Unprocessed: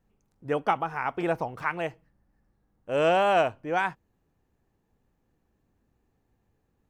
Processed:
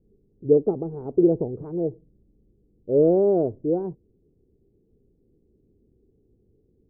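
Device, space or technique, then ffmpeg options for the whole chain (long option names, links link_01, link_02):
under water: -af "lowpass=frequency=420:width=0.5412,lowpass=frequency=420:width=1.3066,equalizer=frequency=410:width_type=o:width=0.58:gain=11,volume=7.5dB"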